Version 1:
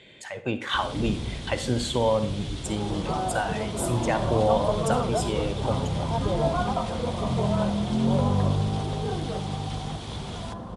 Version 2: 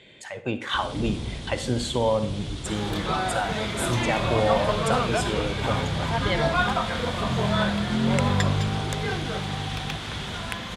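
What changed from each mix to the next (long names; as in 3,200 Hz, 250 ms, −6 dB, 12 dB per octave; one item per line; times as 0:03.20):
second sound: remove low-pass filter 1,000 Hz 24 dB per octave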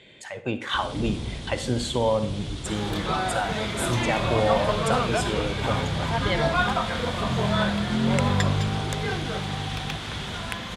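nothing changed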